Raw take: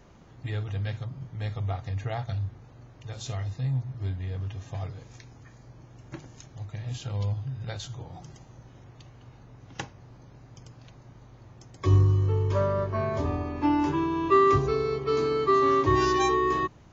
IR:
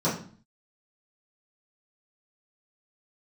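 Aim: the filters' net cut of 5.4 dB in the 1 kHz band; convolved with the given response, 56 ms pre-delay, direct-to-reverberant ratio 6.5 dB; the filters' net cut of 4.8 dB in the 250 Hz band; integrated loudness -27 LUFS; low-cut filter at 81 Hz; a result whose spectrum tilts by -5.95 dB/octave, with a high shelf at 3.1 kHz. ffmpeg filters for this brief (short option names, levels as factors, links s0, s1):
-filter_complex "[0:a]highpass=81,equalizer=f=250:t=o:g=-7,equalizer=f=1000:t=o:g=-7,highshelf=f=3100:g=6.5,asplit=2[s0][s1];[1:a]atrim=start_sample=2205,adelay=56[s2];[s1][s2]afir=irnorm=-1:irlink=0,volume=0.112[s3];[s0][s3]amix=inputs=2:normalize=0,volume=1.19"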